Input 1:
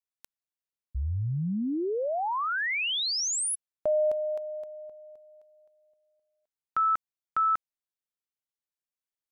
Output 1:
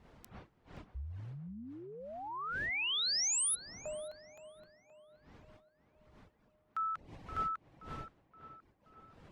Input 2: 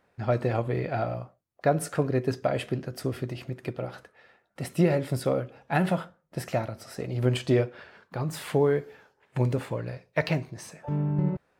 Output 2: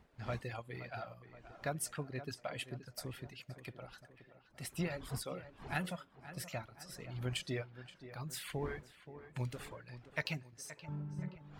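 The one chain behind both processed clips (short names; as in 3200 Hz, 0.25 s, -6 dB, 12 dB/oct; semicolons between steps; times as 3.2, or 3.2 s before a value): wind noise 470 Hz -41 dBFS; reverb removal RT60 1.9 s; passive tone stack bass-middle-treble 5-5-5; on a send: tape echo 0.524 s, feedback 58%, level -12 dB, low-pass 2500 Hz; on the sum: gain +2.5 dB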